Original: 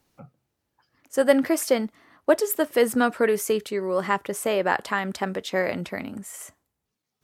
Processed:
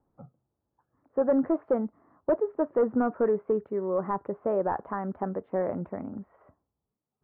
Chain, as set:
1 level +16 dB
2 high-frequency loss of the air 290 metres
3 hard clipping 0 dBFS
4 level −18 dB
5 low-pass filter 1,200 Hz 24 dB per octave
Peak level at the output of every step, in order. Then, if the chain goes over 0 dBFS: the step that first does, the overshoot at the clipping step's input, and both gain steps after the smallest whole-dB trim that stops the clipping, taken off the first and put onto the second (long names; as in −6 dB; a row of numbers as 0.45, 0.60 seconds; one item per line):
+11.5, +10.0, 0.0, −18.0, −16.5 dBFS
step 1, 10.0 dB
step 1 +6 dB, step 4 −8 dB